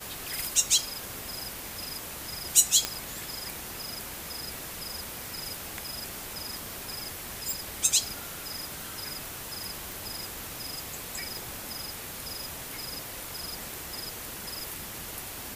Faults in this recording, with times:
2.85 pop -9 dBFS
9.92 pop
11.37 pop

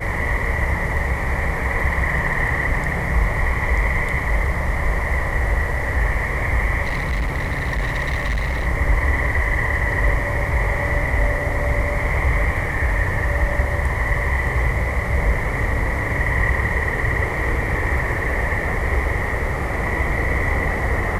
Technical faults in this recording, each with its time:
6.84–8.67 clipped -18 dBFS

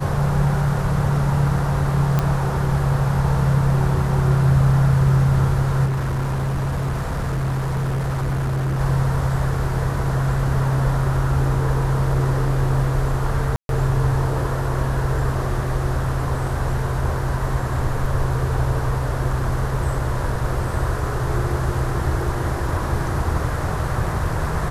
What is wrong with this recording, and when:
2.19 pop -7 dBFS
5.85–8.81 clipped -19 dBFS
13.56–13.69 gap 0.132 s

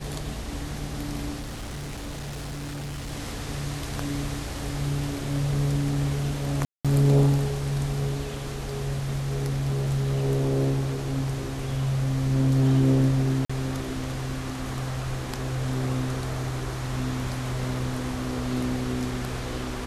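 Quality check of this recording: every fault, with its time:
1.39–3.13 clipped -31 dBFS
6.65–6.85 gap 0.196 s
13.45–13.49 gap 45 ms

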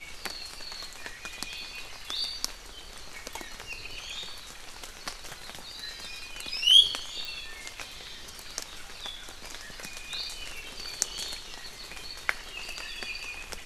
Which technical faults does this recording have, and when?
7.25 pop

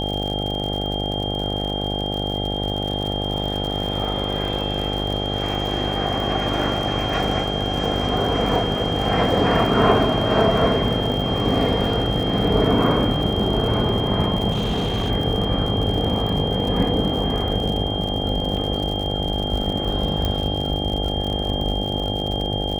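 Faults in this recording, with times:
buzz 50 Hz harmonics 17 -26 dBFS
crackle 79/s -27 dBFS
tone 3200 Hz -27 dBFS
14.51–15.11 clipped -18.5 dBFS
18.57 gap 2.9 ms
20.25 pop -10 dBFS

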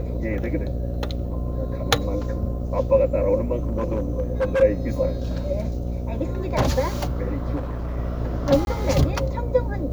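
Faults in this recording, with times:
buzz 60 Hz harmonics 12 -27 dBFS
3.66–4.63 clipped -17.5 dBFS
7.55–7.97 clipped -24.5 dBFS
8.65–8.67 gap 21 ms

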